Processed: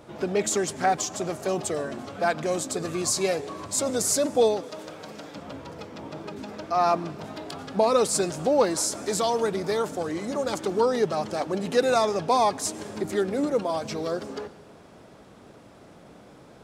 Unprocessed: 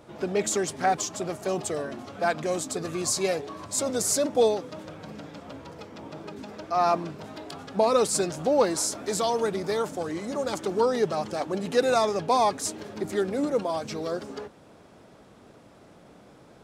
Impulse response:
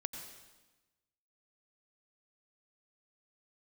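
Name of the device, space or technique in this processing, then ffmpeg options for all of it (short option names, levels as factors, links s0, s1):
compressed reverb return: -filter_complex "[0:a]asplit=2[s0][s1];[1:a]atrim=start_sample=2205[s2];[s1][s2]afir=irnorm=-1:irlink=0,acompressor=threshold=0.0251:ratio=6,volume=0.422[s3];[s0][s3]amix=inputs=2:normalize=0,asettb=1/sr,asplit=3[s4][s5][s6];[s4]atrim=end=4.634[s7];[s5]atrim=start=4.63:end=5.35,asetpts=PTS-STARTPTS,afade=t=in:d=0.004:c=qsin,afade=t=out:st=0.716:d=0.004:c=qsin,bass=f=250:g=-10,treble=f=4000:g=5[s8];[s6]atrim=start=5.346[s9];[s7][s8]acrossfade=d=0.004:c1=hsin:c2=qsin[s10];[s10][s9]acrossfade=d=0.004:c1=qsin:c2=hsin"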